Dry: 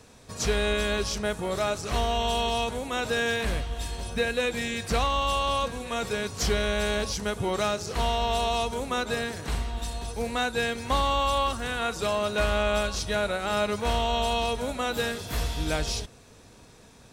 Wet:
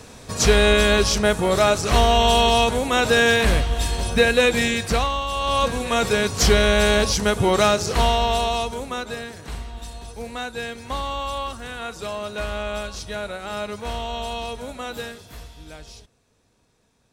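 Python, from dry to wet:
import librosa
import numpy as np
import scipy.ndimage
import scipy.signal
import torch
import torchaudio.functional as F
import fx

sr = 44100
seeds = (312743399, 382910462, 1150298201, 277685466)

y = fx.gain(x, sr, db=fx.line((4.65, 10.0), (5.29, -1.0), (5.69, 9.5), (7.86, 9.5), (9.25, -3.0), (14.97, -3.0), (15.51, -13.0)))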